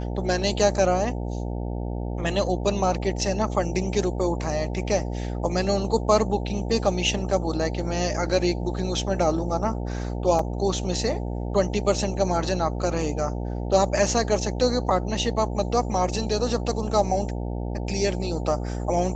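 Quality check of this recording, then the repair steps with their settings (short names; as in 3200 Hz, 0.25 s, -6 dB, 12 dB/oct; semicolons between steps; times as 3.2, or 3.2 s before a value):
buzz 60 Hz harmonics 15 -29 dBFS
10.39 gap 3.1 ms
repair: de-hum 60 Hz, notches 15; interpolate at 10.39, 3.1 ms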